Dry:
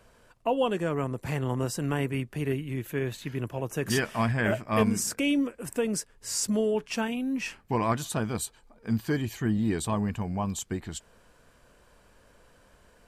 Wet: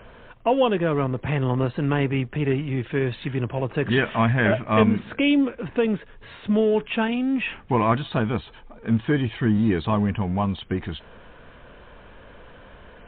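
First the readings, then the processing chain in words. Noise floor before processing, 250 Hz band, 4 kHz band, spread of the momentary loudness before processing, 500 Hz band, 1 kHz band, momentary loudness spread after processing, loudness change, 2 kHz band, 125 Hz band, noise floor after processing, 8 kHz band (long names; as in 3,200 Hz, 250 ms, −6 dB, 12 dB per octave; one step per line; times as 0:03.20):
−61 dBFS, +6.5 dB, +4.0 dB, 7 LU, +6.5 dB, +6.5 dB, 8 LU, +6.0 dB, +6.5 dB, +6.5 dB, −47 dBFS, below −40 dB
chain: mu-law and A-law mismatch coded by mu
level +6 dB
MP3 48 kbit/s 8,000 Hz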